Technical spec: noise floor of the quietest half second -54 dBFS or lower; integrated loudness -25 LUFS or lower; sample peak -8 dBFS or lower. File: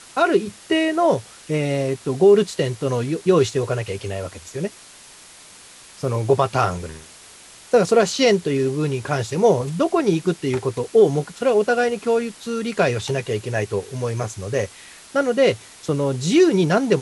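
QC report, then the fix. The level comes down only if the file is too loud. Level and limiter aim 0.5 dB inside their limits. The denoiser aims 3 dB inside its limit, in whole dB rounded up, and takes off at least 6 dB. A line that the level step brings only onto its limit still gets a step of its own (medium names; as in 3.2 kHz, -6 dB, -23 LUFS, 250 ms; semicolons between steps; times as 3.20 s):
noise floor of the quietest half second -45 dBFS: fail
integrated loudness -20.5 LUFS: fail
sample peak -5.0 dBFS: fail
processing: noise reduction 7 dB, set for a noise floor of -45 dBFS; trim -5 dB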